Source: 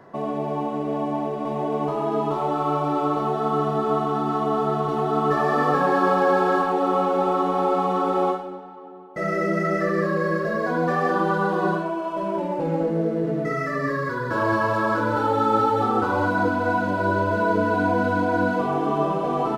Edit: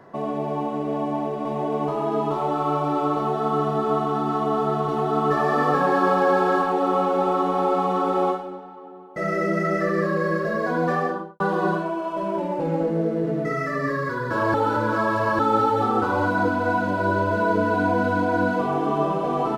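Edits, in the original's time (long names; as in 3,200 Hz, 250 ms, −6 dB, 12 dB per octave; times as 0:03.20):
0:10.92–0:11.40: fade out and dull
0:14.54–0:15.39: reverse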